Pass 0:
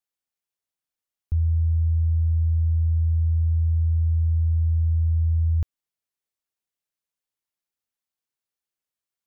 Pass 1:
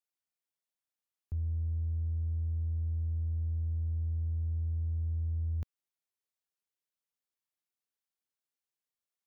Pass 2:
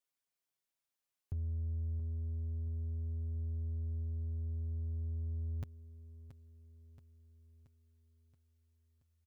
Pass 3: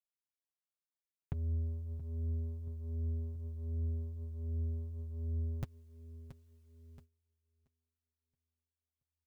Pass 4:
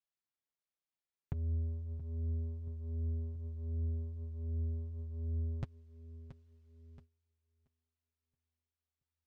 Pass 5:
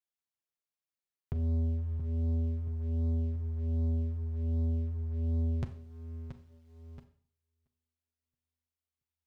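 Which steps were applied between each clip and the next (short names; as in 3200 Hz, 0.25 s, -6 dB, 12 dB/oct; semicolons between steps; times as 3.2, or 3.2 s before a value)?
HPF 120 Hz 6 dB/oct; in parallel at -8.5 dB: soft clip -33.5 dBFS, distortion -11 dB; on the sum: gain -8 dB
comb 7.4 ms, depth 66%; feedback echo 0.677 s, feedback 55%, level -13 dB
gate -60 dBFS, range -21 dB; flange 1.3 Hz, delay 4.7 ms, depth 1.8 ms, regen -32%; gain +10 dB
air absorption 100 m
sample leveller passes 2; Schroeder reverb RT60 0.51 s, combs from 29 ms, DRR 9.5 dB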